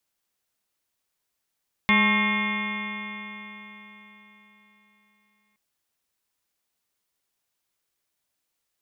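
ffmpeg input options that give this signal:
ffmpeg -f lavfi -i "aevalsrc='0.0891*pow(10,-3*t/4.08)*sin(2*PI*207.4*t)+0.015*pow(10,-3*t/4.08)*sin(2*PI*417.22*t)+0.0112*pow(10,-3*t/4.08)*sin(2*PI*631.8*t)+0.0282*pow(10,-3*t/4.08)*sin(2*PI*853.44*t)+0.0631*pow(10,-3*t/4.08)*sin(2*PI*1084.28*t)+0.0133*pow(10,-3*t/4.08)*sin(2*PI*1326.33*t)+0.0119*pow(10,-3*t/4.08)*sin(2*PI*1581.4*t)+0.0447*pow(10,-3*t/4.08)*sin(2*PI*1851.17*t)+0.119*pow(10,-3*t/4.08)*sin(2*PI*2137.1*t)+0.0355*pow(10,-3*t/4.08)*sin(2*PI*2440.49*t)+0.02*pow(10,-3*t/4.08)*sin(2*PI*2762.5*t)+0.0112*pow(10,-3*t/4.08)*sin(2*PI*3104.11*t)+0.0316*pow(10,-3*t/4.08)*sin(2*PI*3466.17*t)':duration=3.67:sample_rate=44100" out.wav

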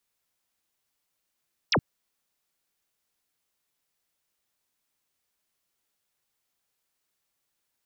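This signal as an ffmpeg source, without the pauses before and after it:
ffmpeg -f lavfi -i "aevalsrc='0.106*clip(t/0.002,0,1)*clip((0.07-t)/0.002,0,1)*sin(2*PI*6300*0.07/log(84/6300)*(exp(log(84/6300)*t/0.07)-1))':duration=0.07:sample_rate=44100" out.wav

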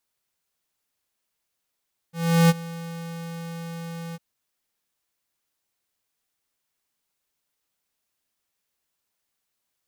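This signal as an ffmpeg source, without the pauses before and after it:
ffmpeg -f lavfi -i "aevalsrc='0.188*(2*lt(mod(167*t,1),0.5)-1)':duration=2.052:sample_rate=44100,afade=type=in:duration=0.365,afade=type=out:start_time=0.365:duration=0.032:silence=0.1,afade=type=out:start_time=2.02:duration=0.032" out.wav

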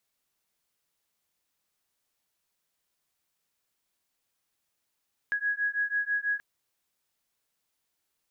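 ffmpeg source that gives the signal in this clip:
ffmpeg -f lavfi -i "aevalsrc='0.0335*(sin(2*PI*1660*t)+sin(2*PI*1666.1*t))':duration=1.08:sample_rate=44100" out.wav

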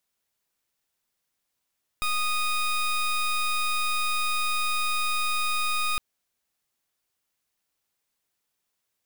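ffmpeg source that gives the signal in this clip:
ffmpeg -f lavfi -i "aevalsrc='0.0531*(2*lt(mod(1240*t,1),0.19)-1)':duration=3.96:sample_rate=44100" out.wav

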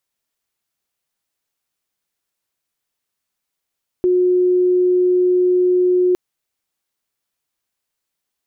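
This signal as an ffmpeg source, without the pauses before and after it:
ffmpeg -f lavfi -i "sine=frequency=362:duration=2.11:sample_rate=44100,volume=6.56dB" out.wav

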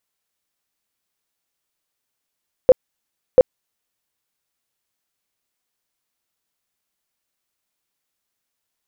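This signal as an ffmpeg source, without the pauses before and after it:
ffmpeg -f lavfi -i "aevalsrc='0.631*sin(2*PI*512*mod(t,0.69))*lt(mod(t,0.69),15/512)':duration=1.38:sample_rate=44100" out.wav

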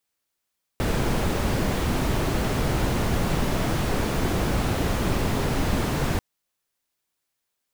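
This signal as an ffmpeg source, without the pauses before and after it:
ffmpeg -f lavfi -i "anoisesrc=color=brown:amplitude=0.331:duration=5.39:sample_rate=44100:seed=1" out.wav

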